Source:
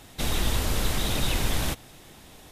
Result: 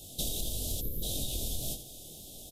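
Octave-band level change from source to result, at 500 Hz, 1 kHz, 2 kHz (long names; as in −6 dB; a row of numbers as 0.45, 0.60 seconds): −10.0, −20.5, −26.5 decibels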